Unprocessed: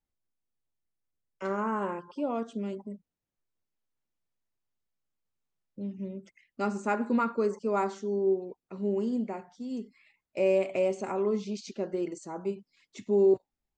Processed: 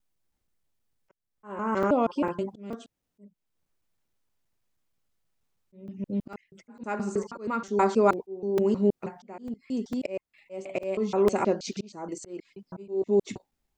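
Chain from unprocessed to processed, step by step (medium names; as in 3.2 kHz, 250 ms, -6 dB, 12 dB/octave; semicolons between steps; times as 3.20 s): slices played last to first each 159 ms, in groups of 3; slow attack 499 ms; crackling interface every 0.45 s, samples 128, zero, from 0.48 s; trim +8 dB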